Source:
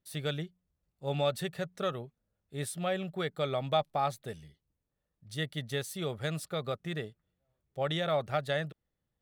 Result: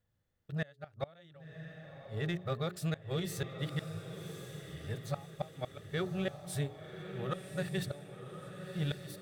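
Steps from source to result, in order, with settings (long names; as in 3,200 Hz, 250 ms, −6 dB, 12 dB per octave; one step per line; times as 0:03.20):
played backwards from end to start
mains-hum notches 60/120/180/240/300/360/420 Hz
harmonic and percussive parts rebalanced percussive −6 dB
thirty-one-band graphic EQ 100 Hz +11 dB, 1,600 Hz +4 dB, 10,000 Hz −5 dB
gate with flip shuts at −25 dBFS, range −29 dB
in parallel at −5 dB: soft clipping −38.5 dBFS, distortion −9 dB
on the sum: feedback delay with all-pass diffusion 1,109 ms, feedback 42%, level −8 dB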